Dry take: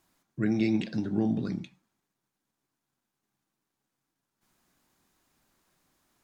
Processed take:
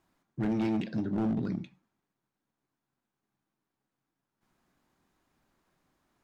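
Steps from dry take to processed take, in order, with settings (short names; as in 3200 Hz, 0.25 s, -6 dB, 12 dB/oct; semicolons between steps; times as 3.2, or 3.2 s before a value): high shelf 3600 Hz -12 dB; hard clip -25 dBFS, distortion -11 dB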